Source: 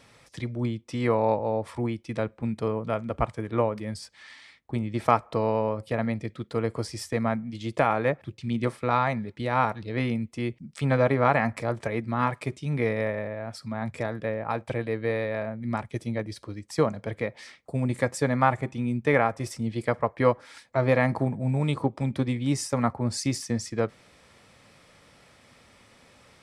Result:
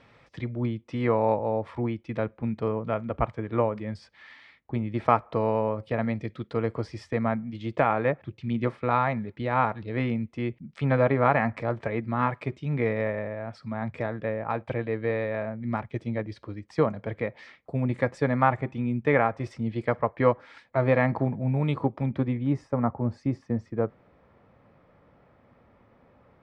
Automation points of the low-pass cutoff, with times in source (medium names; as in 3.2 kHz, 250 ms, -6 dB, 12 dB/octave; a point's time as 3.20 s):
5.76 s 2.8 kHz
6.36 s 4.5 kHz
6.77 s 2.8 kHz
21.84 s 2.8 kHz
22.75 s 1.1 kHz